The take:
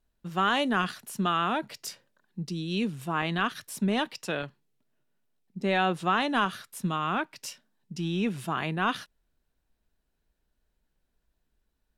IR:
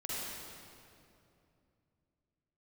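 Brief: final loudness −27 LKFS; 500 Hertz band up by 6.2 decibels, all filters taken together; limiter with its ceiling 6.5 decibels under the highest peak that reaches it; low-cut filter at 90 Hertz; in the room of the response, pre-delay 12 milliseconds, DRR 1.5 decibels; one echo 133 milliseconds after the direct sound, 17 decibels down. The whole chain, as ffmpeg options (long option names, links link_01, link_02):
-filter_complex "[0:a]highpass=90,equalizer=frequency=500:width_type=o:gain=8,alimiter=limit=-17dB:level=0:latency=1,aecho=1:1:133:0.141,asplit=2[link_01][link_02];[1:a]atrim=start_sample=2205,adelay=12[link_03];[link_02][link_03]afir=irnorm=-1:irlink=0,volume=-4.5dB[link_04];[link_01][link_04]amix=inputs=2:normalize=0,volume=0.5dB"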